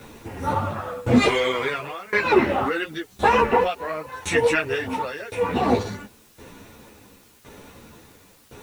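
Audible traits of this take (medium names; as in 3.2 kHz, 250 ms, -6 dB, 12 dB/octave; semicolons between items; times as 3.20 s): tremolo saw down 0.94 Hz, depth 95%; a quantiser's noise floor 10-bit, dither triangular; a shimmering, thickened sound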